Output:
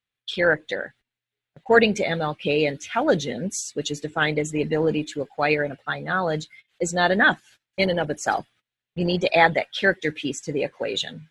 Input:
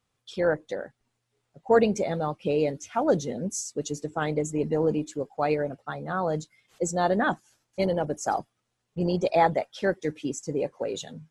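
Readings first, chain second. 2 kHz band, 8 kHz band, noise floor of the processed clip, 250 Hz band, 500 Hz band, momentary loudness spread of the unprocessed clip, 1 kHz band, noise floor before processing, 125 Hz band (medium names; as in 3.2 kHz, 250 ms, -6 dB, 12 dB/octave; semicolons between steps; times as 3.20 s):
+12.5 dB, +2.5 dB, under -85 dBFS, +2.5 dB, +2.5 dB, 11 LU, +3.0 dB, -79 dBFS, +2.5 dB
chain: gate -54 dBFS, range -18 dB; high-order bell 2.5 kHz +11.5 dB; trim +2.5 dB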